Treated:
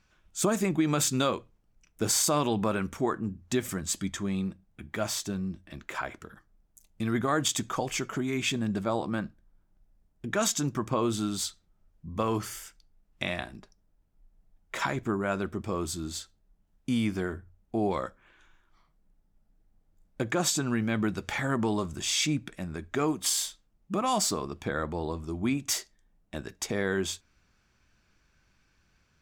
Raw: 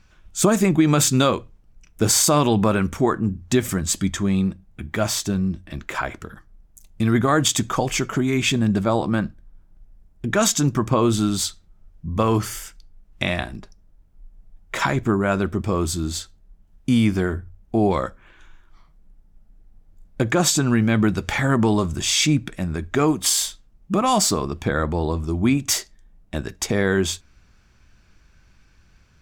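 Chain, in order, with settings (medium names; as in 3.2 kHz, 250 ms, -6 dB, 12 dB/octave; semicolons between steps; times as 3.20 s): bass shelf 120 Hz -8.5 dB; trim -8 dB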